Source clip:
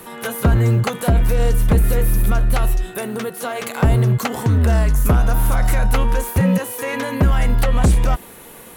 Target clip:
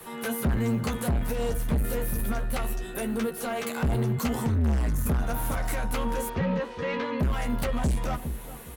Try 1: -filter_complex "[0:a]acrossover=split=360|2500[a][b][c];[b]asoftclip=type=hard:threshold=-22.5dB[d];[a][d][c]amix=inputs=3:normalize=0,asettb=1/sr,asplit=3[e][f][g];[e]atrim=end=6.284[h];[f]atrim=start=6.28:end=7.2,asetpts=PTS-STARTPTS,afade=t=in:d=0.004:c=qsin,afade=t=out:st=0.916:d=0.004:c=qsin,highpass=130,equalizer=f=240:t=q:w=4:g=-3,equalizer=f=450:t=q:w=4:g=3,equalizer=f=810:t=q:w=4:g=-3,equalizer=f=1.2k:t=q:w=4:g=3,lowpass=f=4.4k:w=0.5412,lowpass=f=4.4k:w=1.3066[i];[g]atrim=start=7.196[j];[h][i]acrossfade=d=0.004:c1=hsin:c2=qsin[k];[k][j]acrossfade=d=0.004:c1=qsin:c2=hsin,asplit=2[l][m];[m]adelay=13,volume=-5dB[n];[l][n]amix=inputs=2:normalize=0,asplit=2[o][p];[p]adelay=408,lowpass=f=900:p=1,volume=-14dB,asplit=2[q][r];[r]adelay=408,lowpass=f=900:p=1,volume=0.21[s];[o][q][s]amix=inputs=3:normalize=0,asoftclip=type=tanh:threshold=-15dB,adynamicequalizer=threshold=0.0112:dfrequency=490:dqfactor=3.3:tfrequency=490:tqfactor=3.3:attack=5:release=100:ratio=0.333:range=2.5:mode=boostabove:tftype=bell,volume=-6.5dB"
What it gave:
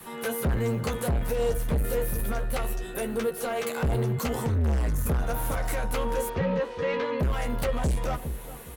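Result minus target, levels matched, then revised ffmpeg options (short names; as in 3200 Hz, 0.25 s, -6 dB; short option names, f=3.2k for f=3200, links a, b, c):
250 Hz band -3.5 dB
-filter_complex "[0:a]acrossover=split=360|2500[a][b][c];[b]asoftclip=type=hard:threshold=-22.5dB[d];[a][d][c]amix=inputs=3:normalize=0,asettb=1/sr,asplit=3[e][f][g];[e]atrim=end=6.284[h];[f]atrim=start=6.28:end=7.2,asetpts=PTS-STARTPTS,afade=t=in:d=0.004:c=qsin,afade=t=out:st=0.916:d=0.004:c=qsin,highpass=130,equalizer=f=240:t=q:w=4:g=-3,equalizer=f=450:t=q:w=4:g=3,equalizer=f=810:t=q:w=4:g=-3,equalizer=f=1.2k:t=q:w=4:g=3,lowpass=f=4.4k:w=0.5412,lowpass=f=4.4k:w=1.3066[i];[g]atrim=start=7.196[j];[h][i]acrossfade=d=0.004:c1=hsin:c2=qsin[k];[k][j]acrossfade=d=0.004:c1=qsin:c2=hsin,asplit=2[l][m];[m]adelay=13,volume=-5dB[n];[l][n]amix=inputs=2:normalize=0,asplit=2[o][p];[p]adelay=408,lowpass=f=900:p=1,volume=-14dB,asplit=2[q][r];[r]adelay=408,lowpass=f=900:p=1,volume=0.21[s];[o][q][s]amix=inputs=3:normalize=0,asoftclip=type=tanh:threshold=-15dB,adynamicequalizer=threshold=0.0112:dfrequency=230:dqfactor=3.3:tfrequency=230:tqfactor=3.3:attack=5:release=100:ratio=0.333:range=2.5:mode=boostabove:tftype=bell,volume=-6.5dB"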